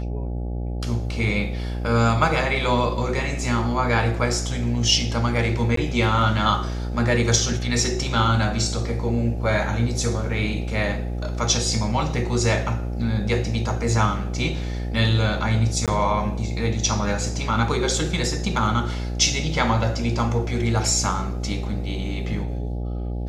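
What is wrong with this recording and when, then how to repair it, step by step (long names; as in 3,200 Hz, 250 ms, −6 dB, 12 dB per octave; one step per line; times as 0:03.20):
mains buzz 60 Hz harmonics 14 −27 dBFS
0:05.76–0:05.77: drop-out 13 ms
0:15.86–0:15.88: drop-out 17 ms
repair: hum removal 60 Hz, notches 14
repair the gap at 0:05.76, 13 ms
repair the gap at 0:15.86, 17 ms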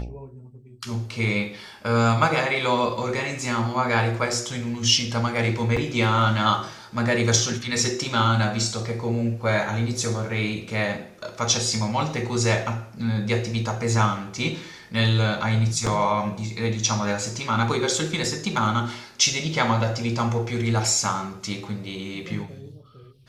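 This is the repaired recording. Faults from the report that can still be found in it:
none of them is left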